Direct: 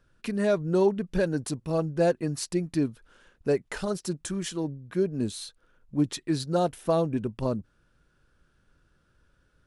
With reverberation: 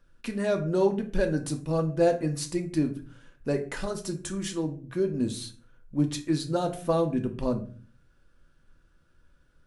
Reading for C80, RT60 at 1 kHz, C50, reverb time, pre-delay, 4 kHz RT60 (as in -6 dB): 17.5 dB, 0.35 s, 12.5 dB, 0.40 s, 3 ms, 0.30 s